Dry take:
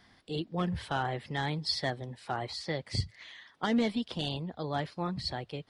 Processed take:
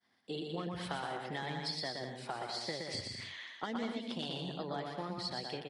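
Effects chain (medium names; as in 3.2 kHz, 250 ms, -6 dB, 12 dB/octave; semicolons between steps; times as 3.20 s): expander -51 dBFS; high-pass 200 Hz 12 dB/octave; compression, threshold -39 dBFS, peak gain reduction 13 dB; bouncing-ball echo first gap 120 ms, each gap 0.65×, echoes 5; trim +1.5 dB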